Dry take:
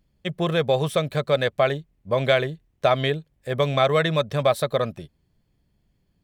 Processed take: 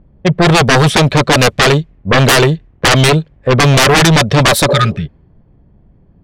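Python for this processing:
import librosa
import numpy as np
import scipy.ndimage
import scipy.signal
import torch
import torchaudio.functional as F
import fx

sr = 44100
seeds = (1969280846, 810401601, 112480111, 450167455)

y = fx.env_lowpass(x, sr, base_hz=950.0, full_db=-17.0)
y = fx.spec_repair(y, sr, seeds[0], start_s=4.72, length_s=0.31, low_hz=220.0, high_hz=1200.0, source='both')
y = fx.fold_sine(y, sr, drive_db=17, ceiling_db=-5.0)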